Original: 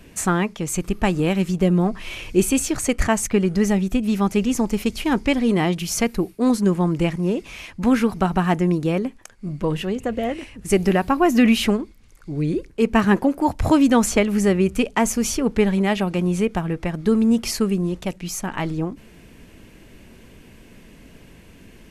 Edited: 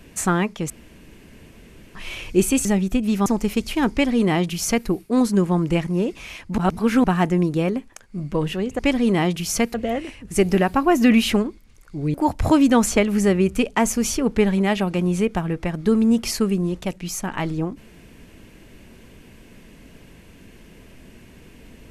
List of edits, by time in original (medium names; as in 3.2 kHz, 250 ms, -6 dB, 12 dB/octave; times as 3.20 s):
0.70–1.95 s: room tone
2.65–3.65 s: delete
4.26–4.55 s: delete
5.21–6.16 s: copy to 10.08 s
7.87–8.33 s: reverse
12.48–13.34 s: delete